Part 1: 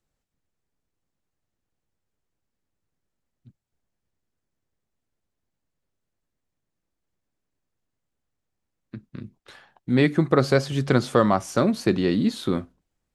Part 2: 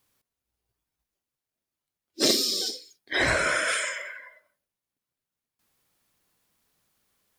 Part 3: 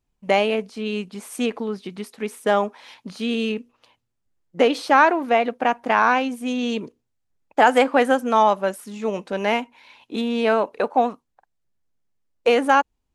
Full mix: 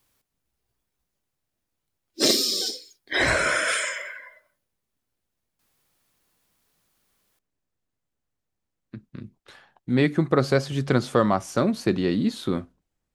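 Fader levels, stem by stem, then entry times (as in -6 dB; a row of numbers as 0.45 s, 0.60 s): -1.5 dB, +2.0 dB, mute; 0.00 s, 0.00 s, mute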